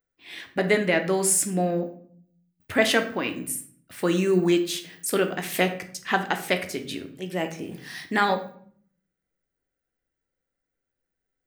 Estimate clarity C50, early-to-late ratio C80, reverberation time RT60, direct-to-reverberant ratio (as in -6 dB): 11.5 dB, 15.5 dB, 0.55 s, 6.0 dB